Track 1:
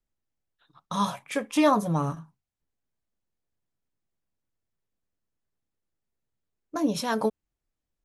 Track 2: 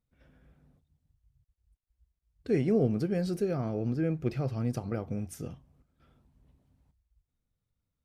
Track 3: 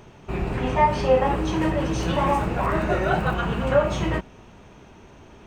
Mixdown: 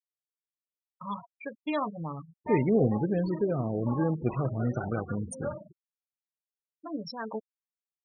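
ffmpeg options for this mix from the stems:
-filter_complex "[0:a]adelay=100,volume=0.299[s0];[1:a]adynamicequalizer=threshold=0.00355:dfrequency=2400:dqfactor=0.7:tfrequency=2400:tqfactor=0.7:attack=5:release=100:ratio=0.375:range=2:mode=cutabove:tftype=highshelf,volume=1.19,asplit=2[s1][s2];[2:a]highpass=f=160:w=0.5412,highpass=f=160:w=1.3066,adelay=1700,volume=0.141[s3];[s2]apad=whole_len=316158[s4];[s3][s4]sidechaingate=range=0.0224:threshold=0.00141:ratio=16:detection=peak[s5];[s0][s1][s5]amix=inputs=3:normalize=0,afftfilt=real='re*gte(hypot(re,im),0.0224)':imag='im*gte(hypot(re,im),0.0224)':win_size=1024:overlap=0.75,highshelf=f=2200:g=9.5"

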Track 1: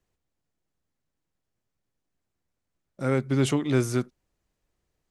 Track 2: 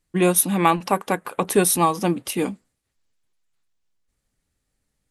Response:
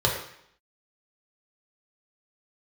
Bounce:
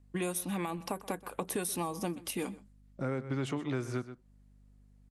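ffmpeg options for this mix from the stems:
-filter_complex "[0:a]lowpass=f=1300:p=1,volume=1.06,asplit=3[s0][s1][s2];[s1]volume=0.168[s3];[1:a]alimiter=limit=0.316:level=0:latency=1:release=187,aeval=exprs='val(0)+0.00251*(sin(2*PI*50*n/s)+sin(2*PI*2*50*n/s)/2+sin(2*PI*3*50*n/s)/3+sin(2*PI*4*50*n/s)/4+sin(2*PI*5*50*n/s)/5)':c=same,volume=0.447,asplit=2[s4][s5];[s5]volume=0.0708[s6];[s2]apad=whole_len=225069[s7];[s4][s7]sidechaincompress=threshold=0.0178:ratio=8:attack=16:release=294[s8];[s3][s6]amix=inputs=2:normalize=0,aecho=0:1:125:1[s9];[s0][s8][s9]amix=inputs=3:normalize=0,acrossover=split=730|5600[s10][s11][s12];[s10]acompressor=threshold=0.02:ratio=4[s13];[s11]acompressor=threshold=0.00891:ratio=4[s14];[s12]acompressor=threshold=0.0158:ratio=4[s15];[s13][s14][s15]amix=inputs=3:normalize=0"

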